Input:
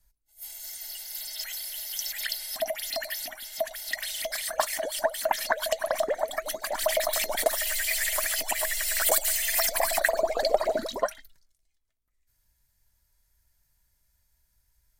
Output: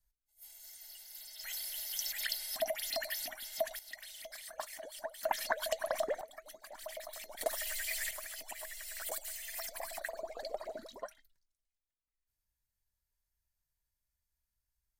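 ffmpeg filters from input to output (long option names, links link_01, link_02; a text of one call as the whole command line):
ffmpeg -i in.wav -af "asetnsamples=nb_out_samples=441:pad=0,asendcmd='1.44 volume volume -5dB;3.79 volume volume -16dB;5.23 volume volume -7.5dB;6.21 volume volume -19.5dB;7.41 volume volume -10dB;8.11 volume volume -17dB',volume=-13dB" out.wav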